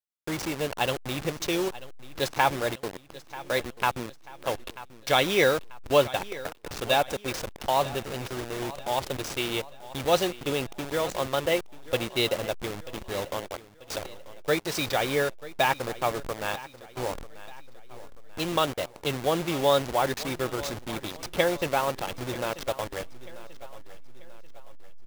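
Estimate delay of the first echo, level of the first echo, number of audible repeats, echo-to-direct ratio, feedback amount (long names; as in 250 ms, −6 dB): 938 ms, −17.0 dB, 3, −16.0 dB, 44%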